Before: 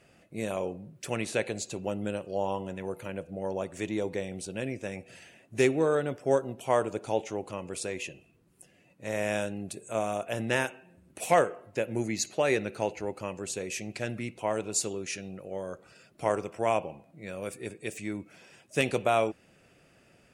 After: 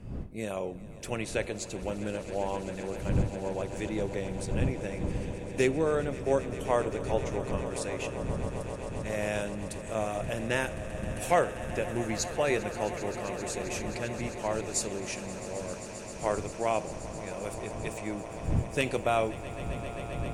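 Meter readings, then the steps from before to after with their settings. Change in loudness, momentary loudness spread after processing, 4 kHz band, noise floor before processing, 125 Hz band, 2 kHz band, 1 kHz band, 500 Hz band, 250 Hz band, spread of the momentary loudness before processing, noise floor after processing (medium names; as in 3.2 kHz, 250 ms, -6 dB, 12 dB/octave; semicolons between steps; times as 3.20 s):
-1.0 dB, 9 LU, -1.0 dB, -62 dBFS, +5.0 dB, -1.0 dB, -1.0 dB, -1.0 dB, 0.0 dB, 13 LU, -41 dBFS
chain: wind noise 150 Hz -37 dBFS; echo with a slow build-up 132 ms, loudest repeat 8, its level -17.5 dB; trim -2 dB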